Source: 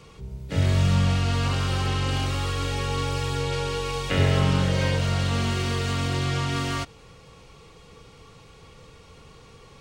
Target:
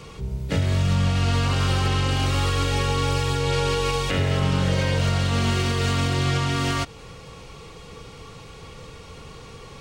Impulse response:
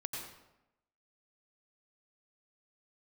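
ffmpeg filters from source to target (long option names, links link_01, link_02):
-af "alimiter=limit=-20.5dB:level=0:latency=1:release=198,volume=7.5dB"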